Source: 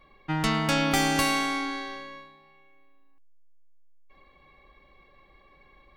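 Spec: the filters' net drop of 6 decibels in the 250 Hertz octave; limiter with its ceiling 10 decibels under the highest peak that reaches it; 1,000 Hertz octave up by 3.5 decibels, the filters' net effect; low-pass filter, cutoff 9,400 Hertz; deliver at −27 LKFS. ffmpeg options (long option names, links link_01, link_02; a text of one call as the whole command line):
ffmpeg -i in.wav -af "lowpass=9400,equalizer=frequency=250:width_type=o:gain=-8,equalizer=frequency=1000:width_type=o:gain=5,volume=3dB,alimiter=limit=-17.5dB:level=0:latency=1" out.wav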